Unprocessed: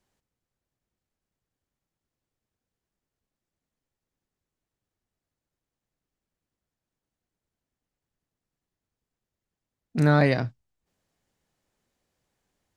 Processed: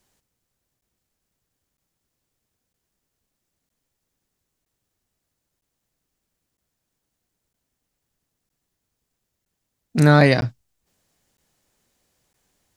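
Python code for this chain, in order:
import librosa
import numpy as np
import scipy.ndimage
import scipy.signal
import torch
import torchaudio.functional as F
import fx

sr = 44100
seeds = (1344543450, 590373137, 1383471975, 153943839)

y = fx.high_shelf(x, sr, hz=4200.0, db=8.0)
y = fx.buffer_crackle(y, sr, first_s=0.81, period_s=0.96, block=512, kind='zero')
y = y * 10.0 ** (6.0 / 20.0)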